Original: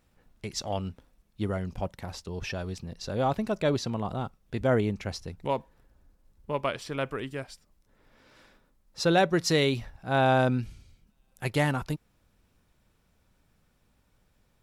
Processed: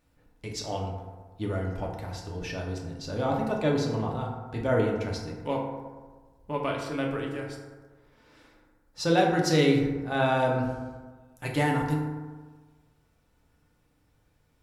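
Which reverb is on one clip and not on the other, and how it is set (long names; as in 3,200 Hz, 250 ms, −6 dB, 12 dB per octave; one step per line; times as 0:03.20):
feedback delay network reverb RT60 1.4 s, low-frequency decay 1×, high-frequency decay 0.4×, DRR −1.5 dB
level −3.5 dB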